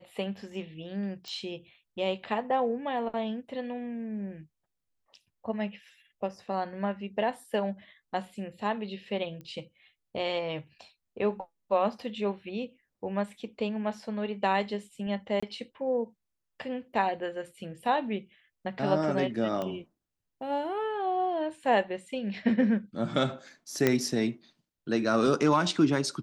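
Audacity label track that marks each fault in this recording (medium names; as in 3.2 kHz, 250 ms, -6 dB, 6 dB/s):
1.280000	1.280000	pop -26 dBFS
9.410000	9.410000	pop -32 dBFS
15.400000	15.430000	dropout 25 ms
19.620000	19.620000	pop -21 dBFS
23.870000	23.870000	pop -9 dBFS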